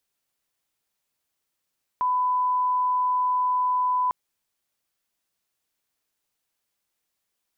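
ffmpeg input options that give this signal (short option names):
-f lavfi -i "sine=f=1000:d=2.1:r=44100,volume=-1.94dB"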